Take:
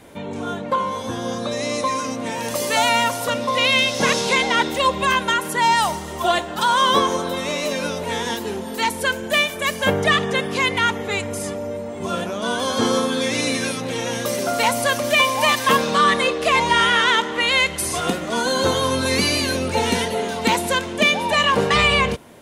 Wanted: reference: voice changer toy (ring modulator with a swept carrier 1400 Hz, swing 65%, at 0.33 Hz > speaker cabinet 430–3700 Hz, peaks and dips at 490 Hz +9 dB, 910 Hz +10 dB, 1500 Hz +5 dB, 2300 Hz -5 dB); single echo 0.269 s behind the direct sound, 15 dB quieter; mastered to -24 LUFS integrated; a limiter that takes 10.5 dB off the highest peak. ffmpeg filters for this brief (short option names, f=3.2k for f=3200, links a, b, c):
-af "alimiter=limit=-14dB:level=0:latency=1,aecho=1:1:269:0.178,aeval=exprs='val(0)*sin(2*PI*1400*n/s+1400*0.65/0.33*sin(2*PI*0.33*n/s))':c=same,highpass=430,equalizer=f=490:t=q:w=4:g=9,equalizer=f=910:t=q:w=4:g=10,equalizer=f=1.5k:t=q:w=4:g=5,equalizer=f=2.3k:t=q:w=4:g=-5,lowpass=f=3.7k:w=0.5412,lowpass=f=3.7k:w=1.3066"